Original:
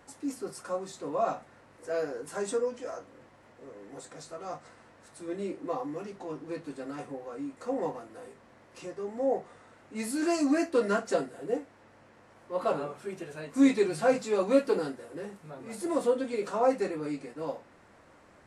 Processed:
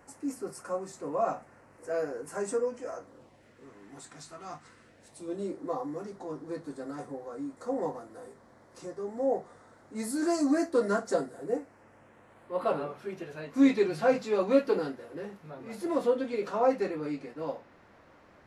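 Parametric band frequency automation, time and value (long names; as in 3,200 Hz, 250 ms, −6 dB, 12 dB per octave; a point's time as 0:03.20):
parametric band −13 dB 0.6 octaves
0:02.99 3,600 Hz
0:03.70 510 Hz
0:04.55 510 Hz
0:05.51 2,700 Hz
0:11.32 2,700 Hz
0:13.05 8,500 Hz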